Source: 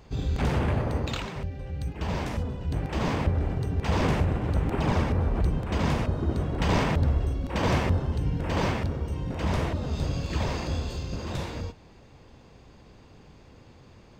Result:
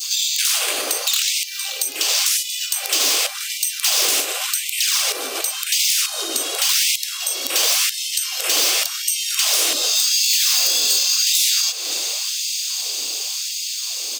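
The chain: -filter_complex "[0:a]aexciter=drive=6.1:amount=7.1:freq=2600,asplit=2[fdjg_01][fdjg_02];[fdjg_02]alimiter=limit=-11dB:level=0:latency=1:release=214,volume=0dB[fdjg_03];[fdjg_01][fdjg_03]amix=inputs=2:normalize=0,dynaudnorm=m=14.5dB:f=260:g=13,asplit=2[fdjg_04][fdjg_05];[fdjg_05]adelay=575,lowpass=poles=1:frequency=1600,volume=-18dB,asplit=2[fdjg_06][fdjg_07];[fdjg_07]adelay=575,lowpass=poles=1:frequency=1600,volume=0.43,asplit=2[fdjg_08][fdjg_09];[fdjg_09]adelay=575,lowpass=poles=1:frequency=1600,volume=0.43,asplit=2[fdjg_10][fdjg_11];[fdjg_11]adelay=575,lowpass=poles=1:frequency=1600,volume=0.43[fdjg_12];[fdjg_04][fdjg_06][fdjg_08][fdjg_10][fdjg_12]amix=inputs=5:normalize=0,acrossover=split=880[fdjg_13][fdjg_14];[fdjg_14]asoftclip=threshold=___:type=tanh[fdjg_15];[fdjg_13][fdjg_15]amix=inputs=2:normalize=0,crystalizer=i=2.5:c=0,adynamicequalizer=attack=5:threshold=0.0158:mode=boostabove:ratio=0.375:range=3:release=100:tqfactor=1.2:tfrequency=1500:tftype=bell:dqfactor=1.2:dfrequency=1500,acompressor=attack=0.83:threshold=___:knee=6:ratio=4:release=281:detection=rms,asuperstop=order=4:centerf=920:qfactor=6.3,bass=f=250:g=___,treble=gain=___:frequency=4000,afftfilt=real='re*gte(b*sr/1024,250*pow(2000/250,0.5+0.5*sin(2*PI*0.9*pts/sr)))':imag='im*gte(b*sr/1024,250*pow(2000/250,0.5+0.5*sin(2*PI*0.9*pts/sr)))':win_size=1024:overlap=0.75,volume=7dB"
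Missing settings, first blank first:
-15.5dB, -23dB, -12, 4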